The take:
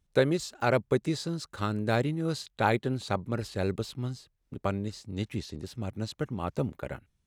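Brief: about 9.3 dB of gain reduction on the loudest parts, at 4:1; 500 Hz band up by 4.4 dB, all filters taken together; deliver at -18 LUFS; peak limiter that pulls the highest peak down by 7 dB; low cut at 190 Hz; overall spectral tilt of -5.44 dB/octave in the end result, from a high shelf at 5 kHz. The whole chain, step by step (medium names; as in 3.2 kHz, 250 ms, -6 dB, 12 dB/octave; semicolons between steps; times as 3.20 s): high-pass 190 Hz; peaking EQ 500 Hz +5.5 dB; treble shelf 5 kHz -9 dB; compression 4:1, threshold -25 dBFS; trim +17.5 dB; peak limiter -3 dBFS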